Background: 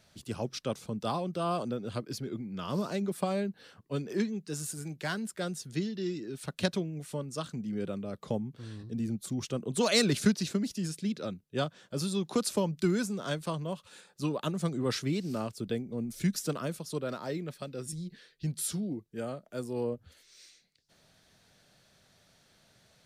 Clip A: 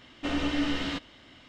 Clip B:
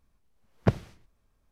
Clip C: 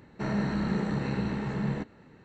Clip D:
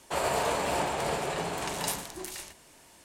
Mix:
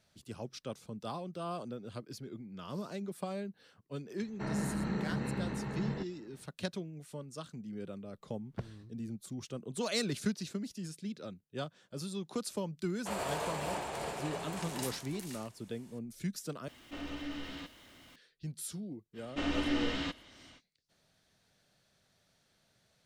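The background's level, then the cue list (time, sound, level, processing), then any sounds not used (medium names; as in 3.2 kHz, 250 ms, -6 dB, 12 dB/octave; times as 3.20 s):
background -8 dB
4.20 s: add C -6 dB
7.91 s: add B -17.5 dB
12.95 s: add D -8.5 dB
16.68 s: replace with A -13.5 dB + jump at every zero crossing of -41.5 dBFS
19.13 s: add A -4 dB, fades 0.05 s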